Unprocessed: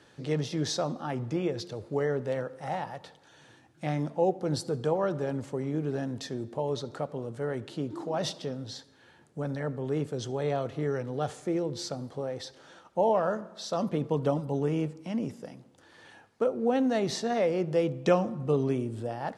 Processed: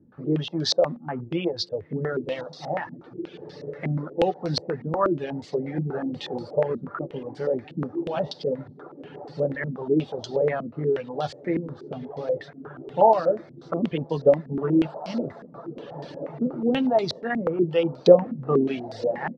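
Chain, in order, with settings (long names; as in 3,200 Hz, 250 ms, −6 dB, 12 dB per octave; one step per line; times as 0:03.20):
feedback delay with all-pass diffusion 1,875 ms, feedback 65%, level −11.5 dB
reverb reduction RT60 1.5 s
double-tracking delay 12 ms −9 dB
low-pass on a step sequencer 8.3 Hz 230–4,600 Hz
level +2 dB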